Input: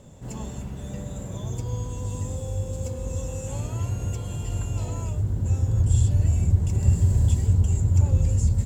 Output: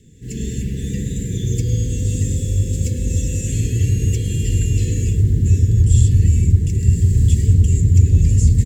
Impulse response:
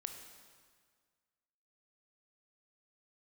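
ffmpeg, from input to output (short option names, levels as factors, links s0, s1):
-filter_complex "[0:a]asuperstop=centerf=890:order=20:qfactor=0.75,asplit=2[s0][s1];[s1]asplit=5[s2][s3][s4][s5][s6];[s2]adelay=107,afreqshift=38,volume=0.1[s7];[s3]adelay=214,afreqshift=76,volume=0.0603[s8];[s4]adelay=321,afreqshift=114,volume=0.0359[s9];[s5]adelay=428,afreqshift=152,volume=0.0216[s10];[s6]adelay=535,afreqshift=190,volume=0.013[s11];[s7][s8][s9][s10][s11]amix=inputs=5:normalize=0[s12];[s0][s12]amix=inputs=2:normalize=0,dynaudnorm=f=130:g=5:m=3.55"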